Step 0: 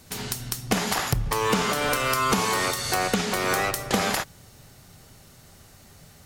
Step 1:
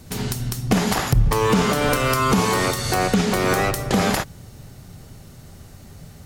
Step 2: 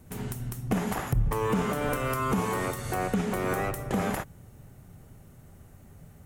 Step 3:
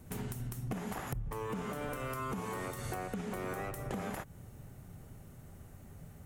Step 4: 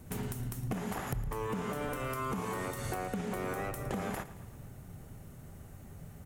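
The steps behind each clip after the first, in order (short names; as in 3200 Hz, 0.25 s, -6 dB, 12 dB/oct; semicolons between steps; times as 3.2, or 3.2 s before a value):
low shelf 470 Hz +10 dB; maximiser +8.5 dB; gain -7 dB
bell 4600 Hz -13 dB 1.1 oct; gain -8.5 dB
compressor 6:1, threshold -35 dBFS, peak gain reduction 14 dB; gain -1 dB
feedback echo 0.112 s, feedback 57%, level -16 dB; gain +2.5 dB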